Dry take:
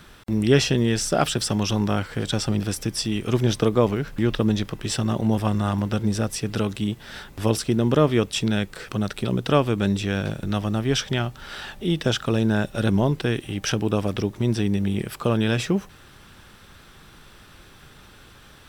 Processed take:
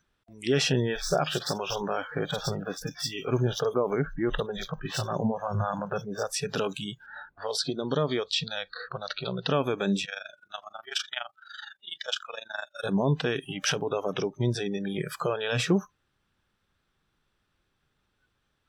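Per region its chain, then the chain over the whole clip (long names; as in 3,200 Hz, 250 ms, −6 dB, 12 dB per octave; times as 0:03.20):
0:00.72–0:06.25: running median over 5 samples + multiband delay without the direct sound lows, highs 50 ms, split 3,400 Hz
0:07.06–0:09.48: low-pass that shuts in the quiet parts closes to 1,200 Hz, open at −15.5 dBFS + parametric band 4,300 Hz +12 dB 0.48 octaves + downward compressor 3 to 1, threshold −24 dBFS
0:10.05–0:12.84: high-pass filter 1,400 Hz 6 dB per octave + notch filter 5,900 Hz, Q 17 + amplitude modulation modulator 24 Hz, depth 75%
whole clip: brickwall limiter −14.5 dBFS; high-shelf EQ 11,000 Hz −11.5 dB; noise reduction from a noise print of the clip's start 28 dB; level +1.5 dB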